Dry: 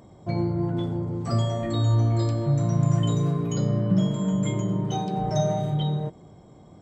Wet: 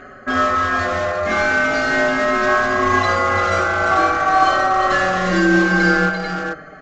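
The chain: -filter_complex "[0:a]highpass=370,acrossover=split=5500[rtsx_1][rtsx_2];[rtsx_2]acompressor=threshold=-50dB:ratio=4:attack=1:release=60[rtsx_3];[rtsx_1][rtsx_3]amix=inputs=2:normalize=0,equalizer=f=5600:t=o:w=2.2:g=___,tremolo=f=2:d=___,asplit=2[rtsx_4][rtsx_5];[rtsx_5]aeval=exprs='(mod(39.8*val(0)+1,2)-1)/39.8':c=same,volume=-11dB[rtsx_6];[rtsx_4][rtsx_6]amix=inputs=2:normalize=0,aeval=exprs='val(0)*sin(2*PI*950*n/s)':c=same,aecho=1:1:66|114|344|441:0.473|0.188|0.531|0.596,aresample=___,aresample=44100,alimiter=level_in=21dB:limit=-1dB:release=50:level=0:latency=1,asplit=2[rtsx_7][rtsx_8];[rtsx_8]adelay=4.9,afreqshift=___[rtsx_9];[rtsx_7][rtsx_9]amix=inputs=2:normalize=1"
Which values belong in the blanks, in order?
-11.5, 0.36, 16000, -0.41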